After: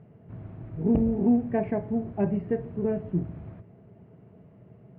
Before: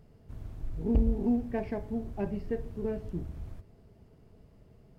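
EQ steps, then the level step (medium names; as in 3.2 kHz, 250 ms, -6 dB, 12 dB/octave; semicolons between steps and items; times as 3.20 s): distance through air 78 m; cabinet simulation 120–2600 Hz, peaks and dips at 120 Hz +8 dB, 180 Hz +7 dB, 350 Hz +3 dB, 650 Hz +4 dB; +4.5 dB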